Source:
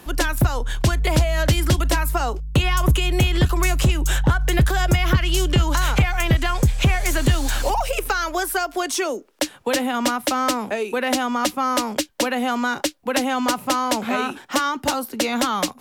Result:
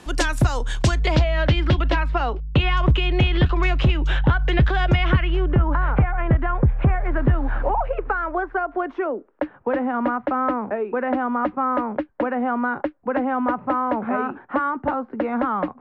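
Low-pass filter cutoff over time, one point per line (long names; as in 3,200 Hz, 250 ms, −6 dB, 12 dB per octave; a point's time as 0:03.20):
low-pass filter 24 dB per octave
0:00.82 8,800 Hz
0:01.32 3,500 Hz
0:05.03 3,500 Hz
0:05.54 1,600 Hz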